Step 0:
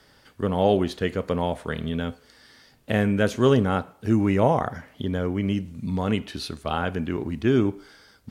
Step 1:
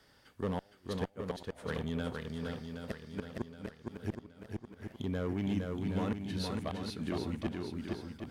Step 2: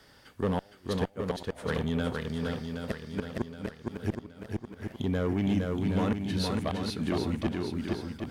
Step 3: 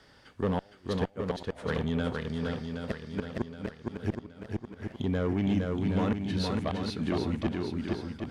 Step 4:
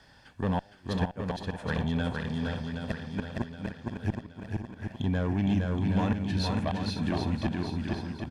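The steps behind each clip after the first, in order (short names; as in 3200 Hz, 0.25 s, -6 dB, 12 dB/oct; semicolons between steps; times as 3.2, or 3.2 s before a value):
flipped gate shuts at -12 dBFS, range -39 dB; one-sided clip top -19 dBFS; swung echo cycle 0.771 s, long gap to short 1.5:1, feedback 40%, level -3.5 dB; gain -8 dB
soft clip -24 dBFS, distortion -24 dB; gain +7 dB
air absorption 52 m
comb 1.2 ms, depth 47%; echo 0.519 s -11 dB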